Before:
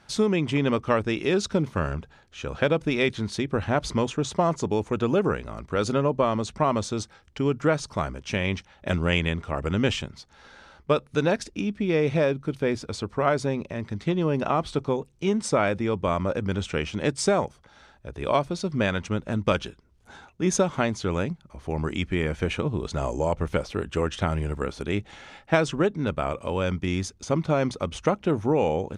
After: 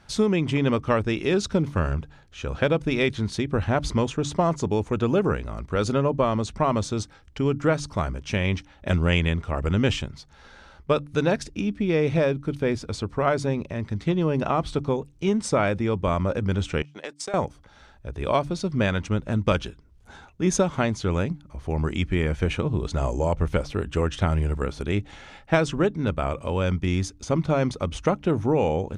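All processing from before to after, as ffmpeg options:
ffmpeg -i in.wav -filter_complex "[0:a]asettb=1/sr,asplit=3[link_01][link_02][link_03];[link_01]atrim=end=16.824[link_04];[link_02]atrim=start=16.82:end=17.34,asetpts=PTS-STARTPTS,afade=type=in:duration=0.004:curve=qsin,afade=type=out:start_time=0.516:duration=0.004:curve=qsin,agate=range=-30dB:threshold=-30dB:ratio=16:release=100:detection=peak,highpass=530,acompressor=threshold=-30dB:ratio=5:attack=3.2:release=140:knee=1:detection=peak[link_05];[link_03]atrim=start=17.336[link_06];[link_04][link_05]acrossfade=duration=0.004:curve1=hsin:curve2=qsin[link_07];[link_07][link_06]acrossfade=duration=0.004:curve1=qsin:curve2=hsin,lowshelf=frequency=92:gain=10.5,bandreject=frequency=145.7:width_type=h:width=4,bandreject=frequency=291.4:width_type=h:width=4" out.wav

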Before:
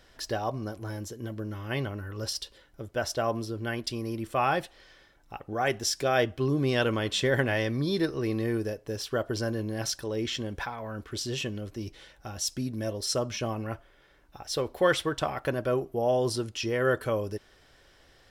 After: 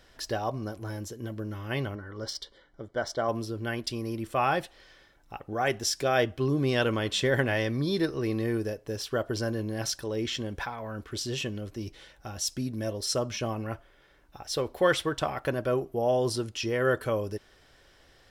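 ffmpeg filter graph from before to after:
ffmpeg -i in.wav -filter_complex "[0:a]asettb=1/sr,asplit=3[link_01][link_02][link_03];[link_01]atrim=end=1.954[link_04];[link_02]atrim=start=1.95:end=3.29,asetpts=PTS-STARTPTS,afade=type=in:duration=0.004:curve=qsin,afade=type=out:start_time=1.336:duration=0.004:curve=qsin,equalizer=frequency=71:width_type=o:width=1.5:gain=-8.5,adynamicsmooth=sensitivity=2.5:basefreq=4900,asuperstop=centerf=2600:order=12:qfactor=4.4[link_05];[link_03]atrim=start=3.286[link_06];[link_04][link_05]acrossfade=duration=0.004:curve1=hsin:curve2=qsin[link_07];[link_07][link_06]acrossfade=duration=0.004:curve1=qsin:curve2=hsin" out.wav

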